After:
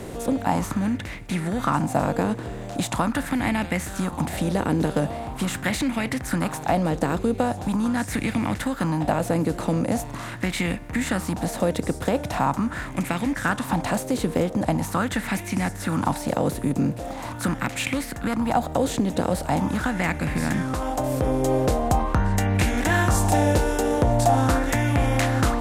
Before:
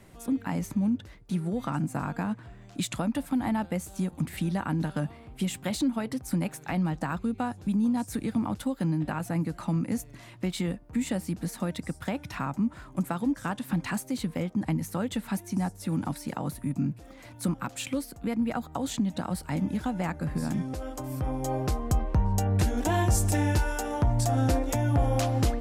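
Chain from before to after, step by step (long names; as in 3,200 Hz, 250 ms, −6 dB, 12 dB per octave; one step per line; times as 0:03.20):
compressor on every frequency bin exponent 0.6
auto-filter bell 0.42 Hz 420–2,300 Hz +12 dB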